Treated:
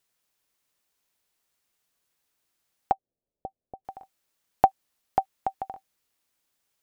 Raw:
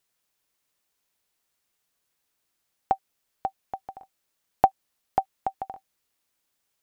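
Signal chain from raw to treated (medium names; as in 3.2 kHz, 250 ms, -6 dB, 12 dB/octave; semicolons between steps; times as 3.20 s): 2.92–3.85 s: Chebyshev low-pass 570 Hz, order 3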